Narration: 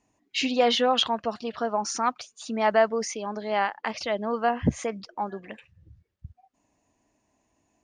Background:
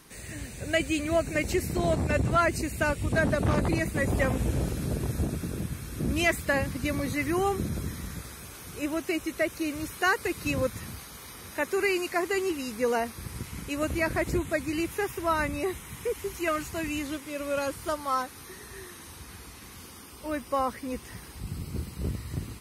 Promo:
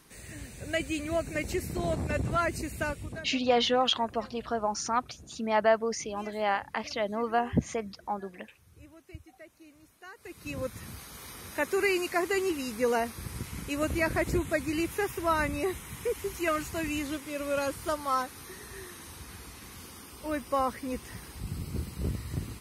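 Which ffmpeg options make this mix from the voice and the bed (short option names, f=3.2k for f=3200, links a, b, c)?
-filter_complex "[0:a]adelay=2900,volume=-3dB[a];[1:a]volume=18.5dB,afade=t=out:st=2.8:d=0.48:silence=0.112202,afade=t=in:st=10.14:d=1.11:silence=0.0707946[b];[a][b]amix=inputs=2:normalize=0"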